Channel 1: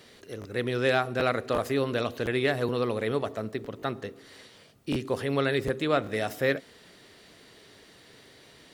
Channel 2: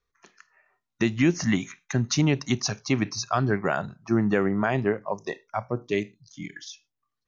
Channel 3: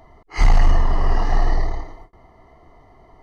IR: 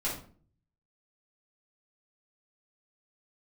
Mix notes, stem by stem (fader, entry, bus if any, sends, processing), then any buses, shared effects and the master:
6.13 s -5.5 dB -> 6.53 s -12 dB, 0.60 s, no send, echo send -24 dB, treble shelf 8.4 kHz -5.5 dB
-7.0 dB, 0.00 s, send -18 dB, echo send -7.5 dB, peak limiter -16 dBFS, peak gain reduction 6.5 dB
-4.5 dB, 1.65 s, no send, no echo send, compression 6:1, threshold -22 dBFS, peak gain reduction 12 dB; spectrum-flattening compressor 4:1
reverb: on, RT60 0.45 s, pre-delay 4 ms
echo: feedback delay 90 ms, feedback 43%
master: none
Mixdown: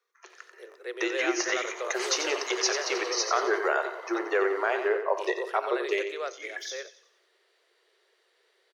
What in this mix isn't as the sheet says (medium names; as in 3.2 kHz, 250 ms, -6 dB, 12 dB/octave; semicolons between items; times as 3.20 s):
stem 1: entry 0.60 s -> 0.30 s; stem 2 -7.0 dB -> +4.5 dB; master: extra rippled Chebyshev high-pass 350 Hz, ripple 3 dB